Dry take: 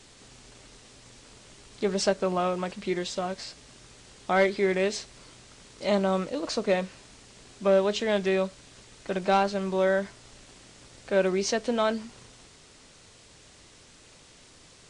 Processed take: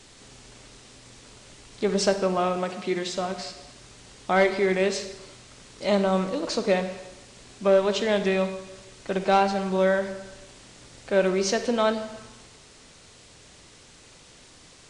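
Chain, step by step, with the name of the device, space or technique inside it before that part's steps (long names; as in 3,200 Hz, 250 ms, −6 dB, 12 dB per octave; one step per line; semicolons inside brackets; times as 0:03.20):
saturated reverb return (on a send at −7.5 dB: convolution reverb RT60 1.0 s, pre-delay 40 ms + soft clipping −19 dBFS, distortion −15 dB)
0:02.57–0:03.13: on the sum: high-pass filter 110 Hz
level +2 dB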